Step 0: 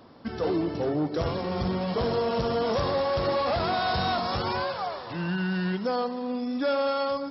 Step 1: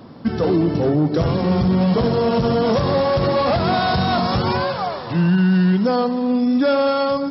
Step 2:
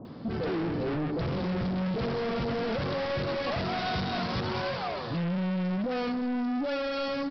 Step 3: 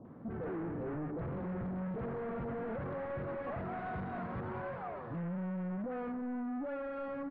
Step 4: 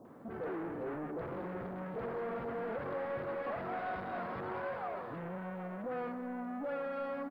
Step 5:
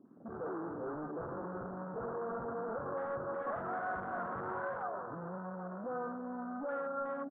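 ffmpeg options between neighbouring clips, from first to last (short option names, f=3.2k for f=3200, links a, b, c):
-af "equalizer=f=160:w=0.8:g=9.5,alimiter=limit=-17dB:level=0:latency=1:release=51,volume=7dB"
-filter_complex "[0:a]aresample=11025,asoftclip=type=tanh:threshold=-25.5dB,aresample=44100,acrossover=split=910[a][b];[b]adelay=50[c];[a][c]amix=inputs=2:normalize=0,volume=-2.5dB"
-af "lowpass=f=1.8k:w=0.5412,lowpass=f=1.8k:w=1.3066,volume=-8.5dB"
-filter_complex "[0:a]bass=f=250:g=-12,treble=f=4k:g=12,asplit=2[a][b];[b]adelay=780,lowpass=f=2k:p=1,volume=-12dB,asplit=2[c][d];[d]adelay=780,lowpass=f=2k:p=1,volume=0.53,asplit=2[e][f];[f]adelay=780,lowpass=f=2k:p=1,volume=0.53,asplit=2[g][h];[h]adelay=780,lowpass=f=2k:p=1,volume=0.53,asplit=2[i][j];[j]adelay=780,lowpass=f=2k:p=1,volume=0.53,asplit=2[k][l];[l]adelay=780,lowpass=f=2k:p=1,volume=0.53[m];[a][c][e][g][i][k][m]amix=inputs=7:normalize=0,volume=2.5dB"
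-af "afwtdn=0.00631,highshelf=f=1.9k:t=q:w=3:g=-9.5,volume=-1.5dB"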